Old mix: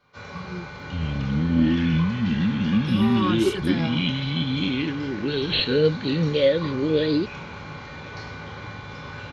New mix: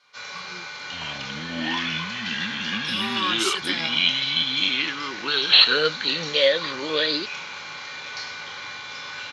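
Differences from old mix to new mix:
second sound: remove Butterworth band-reject 1,000 Hz, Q 0.71
master: add meter weighting curve ITU-R 468

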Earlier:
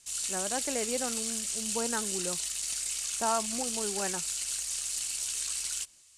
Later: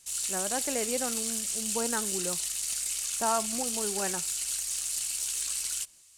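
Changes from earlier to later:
background: remove low-pass filter 9,500 Hz 12 dB per octave
reverb: on, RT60 0.30 s

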